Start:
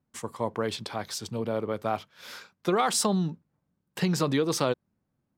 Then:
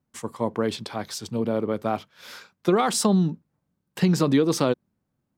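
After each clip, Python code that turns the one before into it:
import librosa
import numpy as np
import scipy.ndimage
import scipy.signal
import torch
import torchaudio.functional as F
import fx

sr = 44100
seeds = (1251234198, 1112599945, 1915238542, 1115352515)

y = fx.dynamic_eq(x, sr, hz=250.0, q=0.85, threshold_db=-40.0, ratio=4.0, max_db=7)
y = F.gain(torch.from_numpy(y), 1.0).numpy()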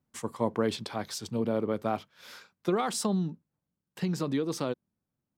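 y = fx.rider(x, sr, range_db=5, speed_s=2.0)
y = F.gain(torch.from_numpy(y), -7.0).numpy()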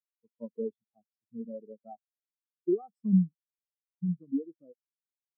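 y = fx.spectral_expand(x, sr, expansion=4.0)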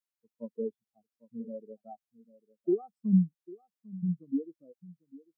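y = x + 10.0 ** (-19.5 / 20.0) * np.pad(x, (int(798 * sr / 1000.0), 0))[:len(x)]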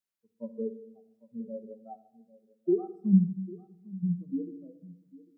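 y = fx.room_shoebox(x, sr, seeds[0], volume_m3=2300.0, walls='furnished', distance_m=1.1)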